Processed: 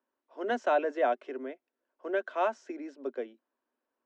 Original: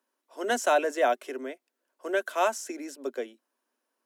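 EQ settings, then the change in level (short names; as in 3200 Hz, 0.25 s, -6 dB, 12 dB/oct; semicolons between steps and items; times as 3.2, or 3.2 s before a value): air absorption 140 m; tape spacing loss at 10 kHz 24 dB; high shelf 5500 Hz +7.5 dB; -1.0 dB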